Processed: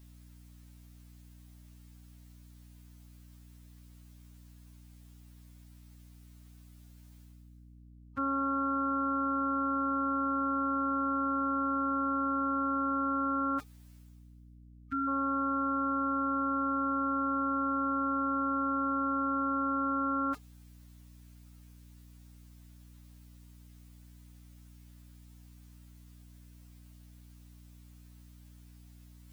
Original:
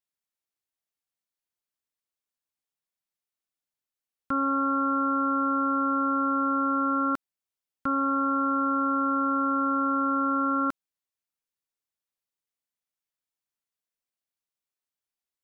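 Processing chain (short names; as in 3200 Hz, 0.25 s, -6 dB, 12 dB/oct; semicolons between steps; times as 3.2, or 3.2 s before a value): time stretch by phase-locked vocoder 1.9×; reverse; upward compressor, threshold -37 dBFS; reverse; hum 60 Hz, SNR 19 dB; spectral delete 14.47–15.08, 340–1200 Hz; gain -5.5 dB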